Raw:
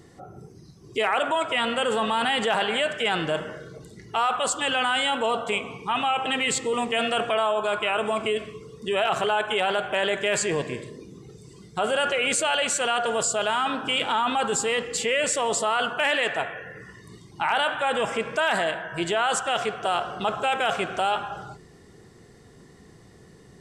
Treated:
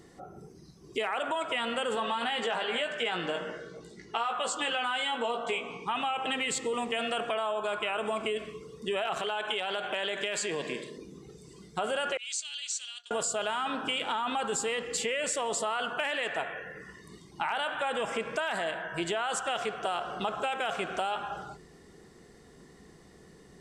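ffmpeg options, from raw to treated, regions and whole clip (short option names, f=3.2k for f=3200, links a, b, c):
-filter_complex "[0:a]asettb=1/sr,asplit=3[a][b][c];[a]atrim=end=1.954[d];[b]atrim=start=1.95:end=5.87,asetpts=PTS-STARTPTS,afade=t=in:d=0.004:c=qsin,afade=t=out:st=3.916:d=0.004:c=qsin,lowpass=7.5k,lowshelf=f=110:g=-11,asplit=2[e][f];[f]adelay=17,volume=-5dB[g];[e][g]amix=inputs=2:normalize=0,atrim=end_sample=172872[h];[c]atrim=start=5.866[i];[d][h]acrossfade=d=0.004:c1=hsin:c2=qsin[j];[j][i]acrossfade=d=0.004:c1=qsin:c2=hsin,asettb=1/sr,asplit=3[k][l][m];[k]atrim=end=9.174[n];[l]atrim=start=9.17:end=10.98,asetpts=PTS-STARTPTS,afade=t=in:d=0.004:c=qsin,afade=t=out:st=1.806:d=0.004:c=qsin,highpass=160,acompressor=threshold=-26dB:ratio=2.5:attack=3.2:release=140:knee=1:detection=peak,equalizer=f=3.6k:t=o:w=1.1:g=6[o];[m]atrim=start=10.976[p];[n][o]acrossfade=d=0.004:c1=hsin:c2=qsin[q];[q][p]acrossfade=d=0.004:c1=qsin:c2=hsin,asettb=1/sr,asplit=3[r][s][t];[r]atrim=end=12.174[u];[s]atrim=start=12.17:end=13.11,asetpts=PTS-STARTPTS,afade=t=in:d=0.004:c=qsin,afade=t=out:st=0.936:d=0.004:c=qsin,asuperpass=centerf=5100:order=4:qfactor=1.5,agate=range=-33dB:threshold=-41dB:ratio=3:release=100:detection=peak[v];[t]atrim=start=13.106[w];[u][v]acrossfade=d=0.004:c1=hsin:c2=qsin[x];[x][w]acrossfade=d=0.004:c1=qsin:c2=hsin,equalizer=f=110:t=o:w=0.39:g=-14,acompressor=threshold=-25dB:ratio=6,volume=-2.5dB"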